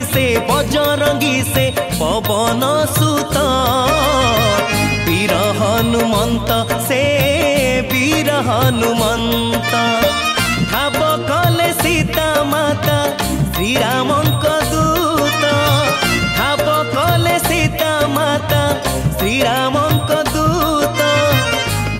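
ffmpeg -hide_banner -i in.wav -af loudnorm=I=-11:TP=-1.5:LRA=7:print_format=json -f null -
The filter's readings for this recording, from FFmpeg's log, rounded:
"input_i" : "-14.5",
"input_tp" : "-3.0",
"input_lra" : "0.8",
"input_thresh" : "-24.5",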